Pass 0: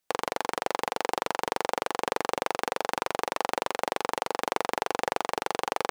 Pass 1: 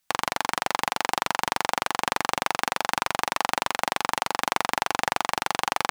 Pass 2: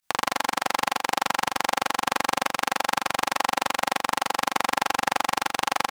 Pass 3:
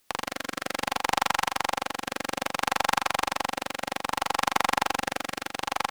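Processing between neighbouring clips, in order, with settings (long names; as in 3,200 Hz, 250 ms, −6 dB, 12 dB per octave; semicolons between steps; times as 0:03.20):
parametric band 450 Hz −14 dB 0.98 octaves; level +7 dB
fake sidechain pumping 120 BPM, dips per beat 1, −18 dB, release 66 ms; on a send: repeating echo 82 ms, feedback 16%, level −5 dB
rotating-speaker cabinet horn 0.6 Hz; harmonic generator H 8 −31 dB, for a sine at −4 dBFS; background noise white −67 dBFS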